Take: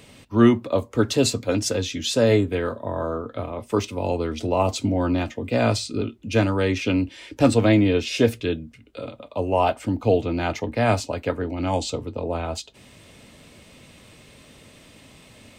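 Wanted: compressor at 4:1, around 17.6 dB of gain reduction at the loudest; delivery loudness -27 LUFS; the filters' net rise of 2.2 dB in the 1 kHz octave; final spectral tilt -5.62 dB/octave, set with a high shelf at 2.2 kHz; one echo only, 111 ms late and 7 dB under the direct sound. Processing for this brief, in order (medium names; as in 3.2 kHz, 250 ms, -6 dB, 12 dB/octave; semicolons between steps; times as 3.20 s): peaking EQ 1 kHz +4.5 dB; treble shelf 2.2 kHz -7.5 dB; compression 4:1, threshold -32 dBFS; delay 111 ms -7 dB; trim +7.5 dB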